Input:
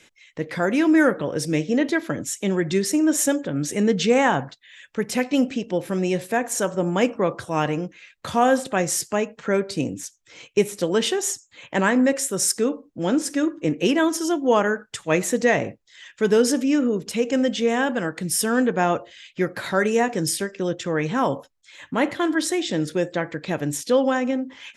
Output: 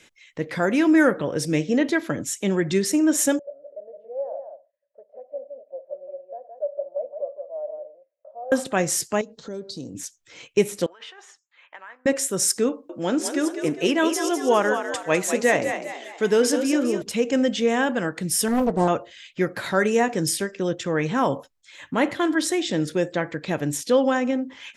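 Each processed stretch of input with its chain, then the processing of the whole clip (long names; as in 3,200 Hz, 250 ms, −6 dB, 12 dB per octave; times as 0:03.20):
0:03.39–0:08.52: flat-topped band-pass 600 Hz, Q 6.7 + single-tap delay 167 ms −6 dB
0:09.21–0:09.95: drawn EQ curve 440 Hz 0 dB, 2,500 Hz −17 dB, 4,000 Hz +10 dB, 9,800 Hz −3 dB + downward compressor 2 to 1, threshold −39 dBFS
0:10.86–0:12.06: compressor whose output falls as the input rises −25 dBFS + four-pole ladder band-pass 1,500 Hz, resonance 20%
0:12.69–0:17.02: low-shelf EQ 160 Hz −10.5 dB + echo with shifted repeats 202 ms, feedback 43%, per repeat +53 Hz, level −8 dB
0:18.48–0:18.88: flat-topped bell 2,100 Hz −13.5 dB 1.3 octaves + highs frequency-modulated by the lows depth 0.76 ms
whole clip: no processing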